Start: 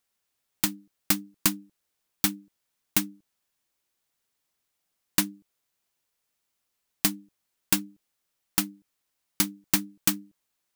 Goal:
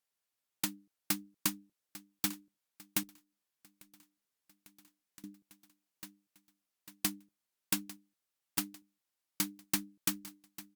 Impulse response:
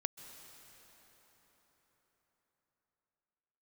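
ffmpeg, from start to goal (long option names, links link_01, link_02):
-filter_complex "[0:a]lowshelf=frequency=65:gain=-11,aecho=1:1:848|1696|2544|3392|4240:0.15|0.0763|0.0389|0.0198|0.0101,asettb=1/sr,asplit=3[link_01][link_02][link_03];[link_01]atrim=end=3.034[link_04];[link_02]atrim=start=3.03:end=5.24,asetpts=PTS-STARTPTS,afade=type=in:duration=0.004:curve=qsin,afade=type=out:start_time=2.206:duration=0.004:curve=qsin,acompressor=threshold=-46dB:ratio=20[link_05];[link_03]atrim=start=5.236[link_06];[link_04][link_05]acrossfade=duration=0.004:curve1=hsin:curve2=qsin[link_07];[link_07][link_06]acrossfade=duration=0.004:curve1=qsin:curve2=hsin,volume=-8.5dB" -ar 48000 -c:a libopus -b:a 96k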